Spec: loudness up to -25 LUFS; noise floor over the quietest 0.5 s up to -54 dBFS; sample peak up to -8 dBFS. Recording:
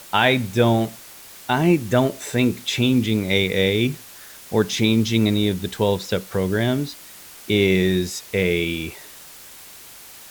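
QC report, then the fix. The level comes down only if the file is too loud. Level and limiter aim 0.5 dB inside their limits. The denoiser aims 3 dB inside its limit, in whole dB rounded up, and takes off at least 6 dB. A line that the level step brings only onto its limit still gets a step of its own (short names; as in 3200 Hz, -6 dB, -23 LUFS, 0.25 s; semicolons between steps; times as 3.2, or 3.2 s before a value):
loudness -20.5 LUFS: fail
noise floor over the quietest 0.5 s -42 dBFS: fail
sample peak -4.5 dBFS: fail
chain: denoiser 10 dB, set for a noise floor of -42 dBFS; gain -5 dB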